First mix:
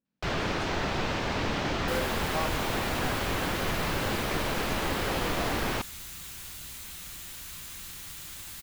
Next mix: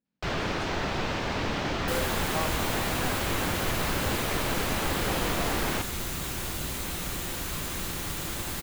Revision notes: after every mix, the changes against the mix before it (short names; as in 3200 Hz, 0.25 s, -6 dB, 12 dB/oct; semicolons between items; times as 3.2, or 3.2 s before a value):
second sound: remove passive tone stack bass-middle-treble 5-5-5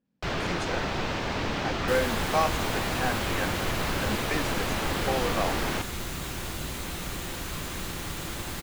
speech +9.0 dB; second sound: add high shelf 8000 Hz -6.5 dB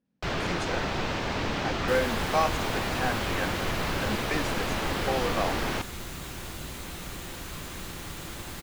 second sound -4.0 dB